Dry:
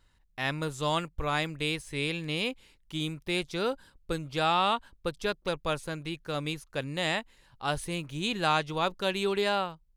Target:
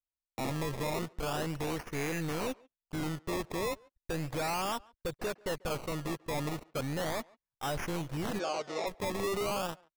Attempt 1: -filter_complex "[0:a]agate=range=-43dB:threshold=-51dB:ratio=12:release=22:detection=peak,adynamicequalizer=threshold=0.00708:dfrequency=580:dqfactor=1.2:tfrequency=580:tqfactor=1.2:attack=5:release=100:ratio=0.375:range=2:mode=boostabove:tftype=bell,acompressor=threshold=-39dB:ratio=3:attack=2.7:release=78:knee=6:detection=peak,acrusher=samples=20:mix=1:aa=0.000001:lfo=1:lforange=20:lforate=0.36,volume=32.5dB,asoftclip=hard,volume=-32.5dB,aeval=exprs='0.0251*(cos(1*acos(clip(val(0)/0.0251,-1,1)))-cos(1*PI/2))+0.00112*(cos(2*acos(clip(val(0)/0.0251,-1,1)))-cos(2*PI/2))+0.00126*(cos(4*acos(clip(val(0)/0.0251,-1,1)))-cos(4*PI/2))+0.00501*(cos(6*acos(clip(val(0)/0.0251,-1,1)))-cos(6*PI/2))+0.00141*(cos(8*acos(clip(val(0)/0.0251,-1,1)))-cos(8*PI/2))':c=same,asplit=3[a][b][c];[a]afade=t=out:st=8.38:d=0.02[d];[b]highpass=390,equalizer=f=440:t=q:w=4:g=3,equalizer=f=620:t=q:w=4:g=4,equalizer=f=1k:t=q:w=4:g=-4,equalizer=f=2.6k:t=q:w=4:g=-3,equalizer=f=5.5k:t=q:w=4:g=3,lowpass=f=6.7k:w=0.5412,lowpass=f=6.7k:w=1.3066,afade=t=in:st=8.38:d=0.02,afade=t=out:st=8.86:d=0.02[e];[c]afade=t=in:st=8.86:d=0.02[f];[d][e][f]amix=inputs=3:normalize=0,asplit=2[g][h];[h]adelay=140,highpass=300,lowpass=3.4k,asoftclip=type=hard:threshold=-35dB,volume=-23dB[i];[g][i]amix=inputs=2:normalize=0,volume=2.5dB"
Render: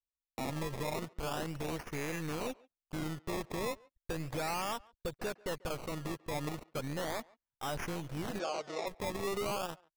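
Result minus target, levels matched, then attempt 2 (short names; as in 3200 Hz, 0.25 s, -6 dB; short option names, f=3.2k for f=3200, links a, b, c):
compressor: peak gain reduction +5.5 dB
-filter_complex "[0:a]agate=range=-43dB:threshold=-51dB:ratio=12:release=22:detection=peak,adynamicequalizer=threshold=0.00708:dfrequency=580:dqfactor=1.2:tfrequency=580:tqfactor=1.2:attack=5:release=100:ratio=0.375:range=2:mode=boostabove:tftype=bell,acompressor=threshold=-31dB:ratio=3:attack=2.7:release=78:knee=6:detection=peak,acrusher=samples=20:mix=1:aa=0.000001:lfo=1:lforange=20:lforate=0.36,volume=32.5dB,asoftclip=hard,volume=-32.5dB,aeval=exprs='0.0251*(cos(1*acos(clip(val(0)/0.0251,-1,1)))-cos(1*PI/2))+0.00112*(cos(2*acos(clip(val(0)/0.0251,-1,1)))-cos(2*PI/2))+0.00126*(cos(4*acos(clip(val(0)/0.0251,-1,1)))-cos(4*PI/2))+0.00501*(cos(6*acos(clip(val(0)/0.0251,-1,1)))-cos(6*PI/2))+0.00141*(cos(8*acos(clip(val(0)/0.0251,-1,1)))-cos(8*PI/2))':c=same,asplit=3[a][b][c];[a]afade=t=out:st=8.38:d=0.02[d];[b]highpass=390,equalizer=f=440:t=q:w=4:g=3,equalizer=f=620:t=q:w=4:g=4,equalizer=f=1k:t=q:w=4:g=-4,equalizer=f=2.6k:t=q:w=4:g=-3,equalizer=f=5.5k:t=q:w=4:g=3,lowpass=f=6.7k:w=0.5412,lowpass=f=6.7k:w=1.3066,afade=t=in:st=8.38:d=0.02,afade=t=out:st=8.86:d=0.02[e];[c]afade=t=in:st=8.86:d=0.02[f];[d][e][f]amix=inputs=3:normalize=0,asplit=2[g][h];[h]adelay=140,highpass=300,lowpass=3.4k,asoftclip=type=hard:threshold=-35dB,volume=-23dB[i];[g][i]amix=inputs=2:normalize=0,volume=2.5dB"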